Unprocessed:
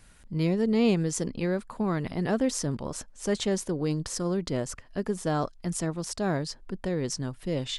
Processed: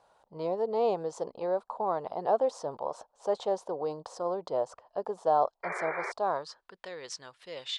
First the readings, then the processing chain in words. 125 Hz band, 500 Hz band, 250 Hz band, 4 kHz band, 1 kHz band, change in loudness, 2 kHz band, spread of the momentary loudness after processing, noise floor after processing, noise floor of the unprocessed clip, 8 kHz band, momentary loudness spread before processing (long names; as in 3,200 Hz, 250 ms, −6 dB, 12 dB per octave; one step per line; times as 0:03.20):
−20.0 dB, +0.5 dB, −16.0 dB, −5.5 dB, +6.5 dB, −2.5 dB, −2.5 dB, 14 LU, −78 dBFS, −54 dBFS, −15.0 dB, 9 LU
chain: band-pass filter sweep 800 Hz → 2,000 Hz, 0:06.12–0:06.78
octave-band graphic EQ 250/500/1,000/2,000/4,000/8,000 Hz −7/+7/+5/−10/+8/+5 dB
sound drawn into the spectrogram noise, 0:05.63–0:06.12, 350–2,400 Hz −40 dBFS
level +4 dB